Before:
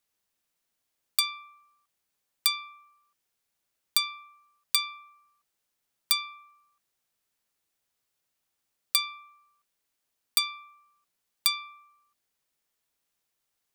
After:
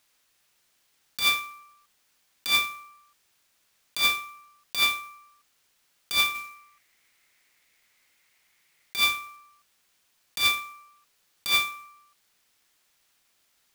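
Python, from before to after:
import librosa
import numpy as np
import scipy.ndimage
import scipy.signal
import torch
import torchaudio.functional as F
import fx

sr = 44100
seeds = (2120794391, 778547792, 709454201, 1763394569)

y = fx.dynamic_eq(x, sr, hz=2900.0, q=1.7, threshold_db=-41.0, ratio=4.0, max_db=7)
y = scipy.signal.sosfilt(scipy.signal.butter(2, 1300.0, 'highpass', fs=sr, output='sos'), y)
y = fx.peak_eq(y, sr, hz=2100.0, db=13.5, octaves=0.44, at=(6.34, 8.96), fade=0.02)
y = fx.over_compress(y, sr, threshold_db=-32.0, ratio=-1.0)
y = fx.clock_jitter(y, sr, seeds[0], jitter_ms=0.021)
y = y * 10.0 ** (8.0 / 20.0)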